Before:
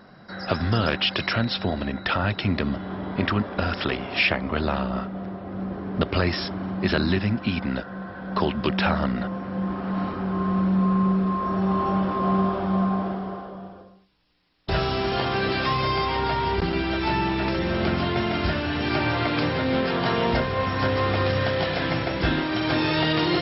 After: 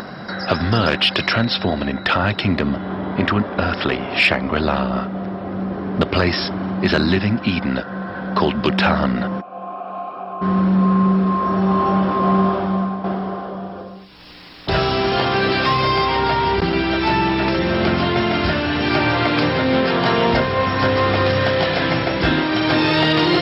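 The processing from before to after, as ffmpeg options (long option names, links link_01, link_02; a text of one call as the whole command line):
ffmpeg -i in.wav -filter_complex "[0:a]asettb=1/sr,asplit=3[link_01][link_02][link_03];[link_01]atrim=end=2.554[link_04];[link_02]atrim=start=2.55:end=4.22,asetpts=PTS-STARTPTS,afade=type=in:duration=0.004:curve=qsin,afade=type=out:start_time=1.666:duration=0.004:curve=qsin,highshelf=frequency=4500:gain=-7.5[link_05];[link_03]atrim=start=4.216[link_06];[link_04][link_05]acrossfade=duration=0.004:curve1=hsin:curve2=qsin[link_07];[link_07][link_06]acrossfade=duration=0.004:curve1=qsin:curve2=hsin,asplit=3[link_08][link_09][link_10];[link_08]afade=type=out:start_time=9.4:duration=0.02[link_11];[link_09]asplit=3[link_12][link_13][link_14];[link_12]bandpass=frequency=730:width_type=q:width=8,volume=0dB[link_15];[link_13]bandpass=frequency=1090:width_type=q:width=8,volume=-6dB[link_16];[link_14]bandpass=frequency=2440:width_type=q:width=8,volume=-9dB[link_17];[link_15][link_16][link_17]amix=inputs=3:normalize=0,afade=type=in:start_time=9.4:duration=0.02,afade=type=out:start_time=10.41:duration=0.02[link_18];[link_10]afade=type=in:start_time=10.41:duration=0.02[link_19];[link_11][link_18][link_19]amix=inputs=3:normalize=0,asplit=2[link_20][link_21];[link_20]atrim=end=13.04,asetpts=PTS-STARTPTS,afade=type=out:start_time=12.53:duration=0.51:silence=0.316228[link_22];[link_21]atrim=start=13.04,asetpts=PTS-STARTPTS,afade=type=in:duration=0.004:curve=hsin:silence=0.316228[link_23];[link_22][link_23]concat=n=2:v=0:a=1,acontrast=86,lowshelf=frequency=68:gain=-10,acompressor=mode=upward:threshold=-22dB:ratio=2.5" out.wav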